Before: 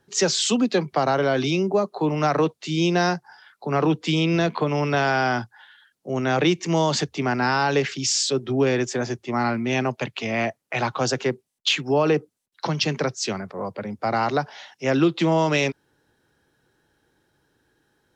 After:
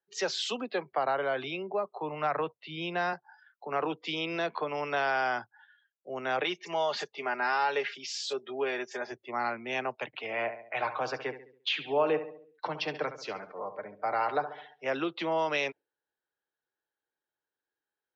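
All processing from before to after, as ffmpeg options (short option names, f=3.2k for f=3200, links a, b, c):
-filter_complex "[0:a]asettb=1/sr,asplit=3[a][b][c];[a]atrim=end=0.614[d];[b]atrim=start=0.61:end=3.13,asetpts=PTS-STARTPTS,afade=t=in:d=0.004:c=qsin,afade=t=out:st=2.516:d=0.004:c=qsin,lowpass=3.6k,asubboost=boost=7:cutoff=130[e];[c]atrim=start=3.126[f];[d][e]acrossfade=d=0.004:c1=hsin:c2=qsin[g];[g][f]acrossfade=d=0.004:c1=qsin:c2=hsin,asettb=1/sr,asplit=3[h][i][j];[h]atrim=end=6.434[k];[i]atrim=start=6.43:end=9.12,asetpts=PTS-STARTPTS,afade=t=in:d=0.004:c=qsin,afade=t=out:st=2.686:d=0.004:c=qsin,lowshelf=f=200:g=-11,aecho=1:1:4.9:0.52,atrim=end_sample=118629,acrossover=split=5800[l][m];[m]adelay=30[n];[l][n]amix=inputs=2:normalize=0,atrim=end_sample=118629[o];[j]atrim=start=9.116[p];[k][o]acrossfade=d=0.004:c1=hsin:c2=qsin[q];[q][p]acrossfade=d=0.004:c1=qsin:c2=hsin,asettb=1/sr,asplit=3[r][s][t];[r]atrim=end=10.064[u];[s]atrim=start=10.06:end=14.86,asetpts=PTS-STARTPTS,afade=t=in:d=0.004:c=qsin,afade=t=out:st=4.796:d=0.004:c=qsin,aemphasis=mode=reproduction:type=50fm,aecho=1:1:6.6:0.36,atrim=end_sample=211680,aecho=1:1:69|138|207|276|345|414:0.266|0.138|0.0719|0.0374|0.0195|0.0101,atrim=end_sample=211680[v];[t]atrim=start=14.856[w];[u][v]acrossfade=d=0.004:c1=hsin:c2=qsin[x];[x][w]acrossfade=d=0.004:c1=qsin:c2=hsin,afftdn=nr=17:nf=-43,acrossover=split=410 4900:gain=0.126 1 0.0891[y][z][aa];[y][z][aa]amix=inputs=3:normalize=0,volume=-6dB"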